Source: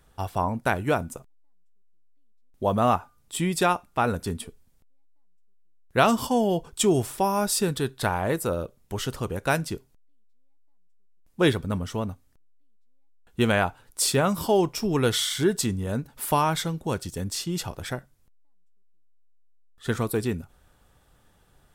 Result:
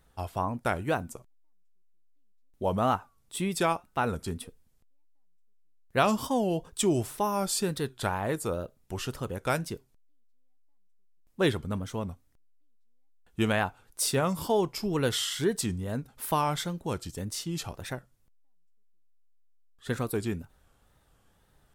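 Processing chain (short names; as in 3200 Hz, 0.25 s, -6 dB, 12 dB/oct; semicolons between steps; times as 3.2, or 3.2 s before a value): wow and flutter 120 cents; gain -4.5 dB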